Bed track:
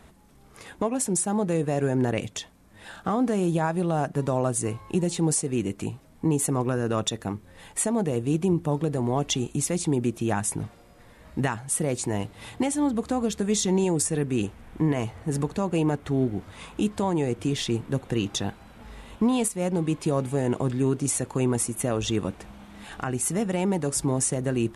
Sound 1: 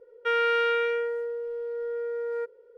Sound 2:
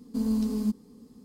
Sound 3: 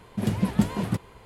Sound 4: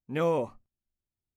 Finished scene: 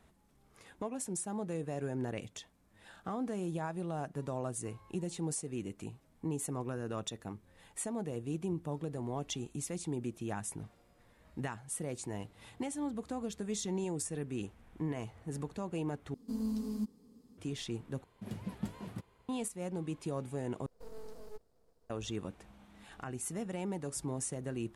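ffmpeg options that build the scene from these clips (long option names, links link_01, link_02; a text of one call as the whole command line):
ffmpeg -i bed.wav -i cue0.wav -i cue1.wav -i cue2.wav -filter_complex "[2:a]asplit=2[link_01][link_02];[0:a]volume=-13dB[link_03];[link_02]aeval=exprs='abs(val(0))':channel_layout=same[link_04];[link_03]asplit=4[link_05][link_06][link_07][link_08];[link_05]atrim=end=16.144[link_09];[link_01]atrim=end=1.24,asetpts=PTS-STARTPTS,volume=-9dB[link_10];[link_06]atrim=start=17.376:end=18.044[link_11];[3:a]atrim=end=1.25,asetpts=PTS-STARTPTS,volume=-17dB[link_12];[link_07]atrim=start=19.286:end=20.664[link_13];[link_04]atrim=end=1.24,asetpts=PTS-STARTPTS,volume=-17.5dB[link_14];[link_08]atrim=start=21.896[link_15];[link_09][link_10]acrossfade=duration=0.004:curve1=hsin:curve2=hsin[link_16];[link_16][link_11]acrossfade=duration=0.004:curve1=hsin:curve2=hsin[link_17];[link_17][link_12]acrossfade=duration=0.004:curve1=hsin:curve2=hsin[link_18];[link_18][link_13]acrossfade=duration=0.004:curve1=hsin:curve2=hsin[link_19];[link_19][link_14]acrossfade=duration=0.004:curve1=hsin:curve2=hsin[link_20];[link_20][link_15]acrossfade=duration=0.004:curve1=hsin:curve2=hsin" out.wav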